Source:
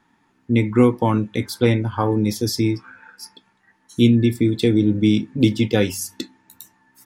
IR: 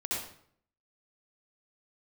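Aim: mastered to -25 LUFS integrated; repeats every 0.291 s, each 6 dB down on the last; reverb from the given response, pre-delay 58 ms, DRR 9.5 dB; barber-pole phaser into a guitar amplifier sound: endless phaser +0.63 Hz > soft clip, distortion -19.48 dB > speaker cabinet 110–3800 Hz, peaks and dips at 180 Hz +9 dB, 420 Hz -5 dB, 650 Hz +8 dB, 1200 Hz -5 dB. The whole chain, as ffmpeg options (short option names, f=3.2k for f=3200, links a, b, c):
-filter_complex "[0:a]aecho=1:1:291|582|873|1164|1455|1746:0.501|0.251|0.125|0.0626|0.0313|0.0157,asplit=2[a][b];[1:a]atrim=start_sample=2205,adelay=58[c];[b][c]afir=irnorm=-1:irlink=0,volume=-14.5dB[d];[a][d]amix=inputs=2:normalize=0,asplit=2[e][f];[f]afreqshift=0.63[g];[e][g]amix=inputs=2:normalize=1,asoftclip=threshold=-10dB,highpass=110,equalizer=f=180:t=q:w=4:g=9,equalizer=f=420:t=q:w=4:g=-5,equalizer=f=650:t=q:w=4:g=8,equalizer=f=1.2k:t=q:w=4:g=-5,lowpass=f=3.8k:w=0.5412,lowpass=f=3.8k:w=1.3066,volume=-4dB"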